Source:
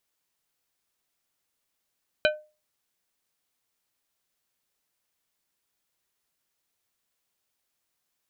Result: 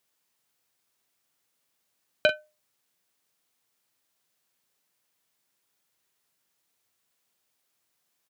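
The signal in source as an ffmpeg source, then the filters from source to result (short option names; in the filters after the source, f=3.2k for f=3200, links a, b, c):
-f lavfi -i "aevalsrc='0.141*pow(10,-3*t/0.31)*sin(2*PI*609*t)+0.112*pow(10,-3*t/0.163)*sin(2*PI*1522.5*t)+0.0891*pow(10,-3*t/0.117)*sin(2*PI*2436*t)+0.0708*pow(10,-3*t/0.1)*sin(2*PI*3045*t)+0.0562*pow(10,-3*t/0.084)*sin(2*PI*3958.5*t)':d=0.89:s=44100"
-filter_complex "[0:a]highpass=f=89:w=0.5412,highpass=f=89:w=1.3066,asplit=2[a][b];[b]asoftclip=type=tanh:threshold=-16.5dB,volume=-8dB[c];[a][c]amix=inputs=2:normalize=0,asplit=2[d][e];[e]adelay=42,volume=-9.5dB[f];[d][f]amix=inputs=2:normalize=0"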